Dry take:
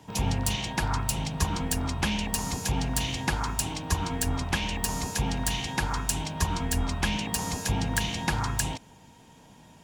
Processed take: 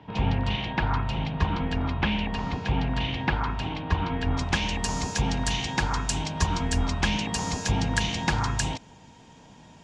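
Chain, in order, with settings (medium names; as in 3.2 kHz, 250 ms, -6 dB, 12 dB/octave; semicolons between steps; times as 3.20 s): low-pass 3.4 kHz 24 dB/octave, from 4.37 s 7.2 kHz; trim +2.5 dB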